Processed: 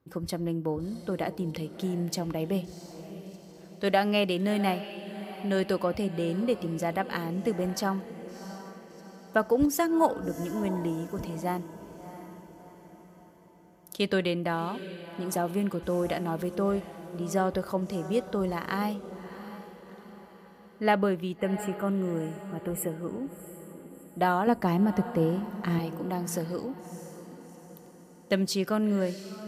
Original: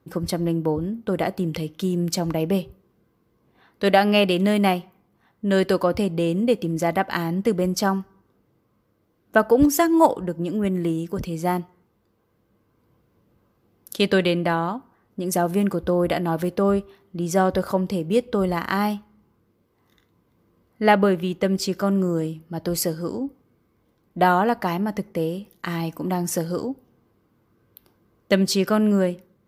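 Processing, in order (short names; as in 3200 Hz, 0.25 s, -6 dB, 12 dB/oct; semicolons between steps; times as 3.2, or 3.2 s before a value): 21.37–24.01 spectral gain 3200–7100 Hz -26 dB; 24.47–25.79 low shelf 490 Hz +10 dB; diffused feedback echo 0.695 s, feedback 49%, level -13 dB; gain -7.5 dB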